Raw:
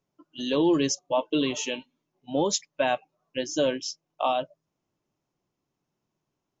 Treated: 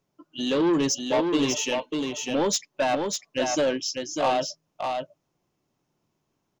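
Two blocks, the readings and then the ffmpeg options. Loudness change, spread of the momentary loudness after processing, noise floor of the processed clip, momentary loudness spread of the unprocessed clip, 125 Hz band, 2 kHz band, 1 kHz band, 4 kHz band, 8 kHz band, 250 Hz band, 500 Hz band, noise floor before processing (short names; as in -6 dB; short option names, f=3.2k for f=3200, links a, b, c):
+1.5 dB, 9 LU, -77 dBFS, 13 LU, +1.5 dB, +3.0 dB, +2.5 dB, +2.5 dB, n/a, +2.0 dB, +2.0 dB, -83 dBFS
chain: -filter_complex "[0:a]asoftclip=type=tanh:threshold=-22.5dB,asplit=2[a][b];[b]aecho=0:1:597:0.596[c];[a][c]amix=inputs=2:normalize=0,volume=4.5dB"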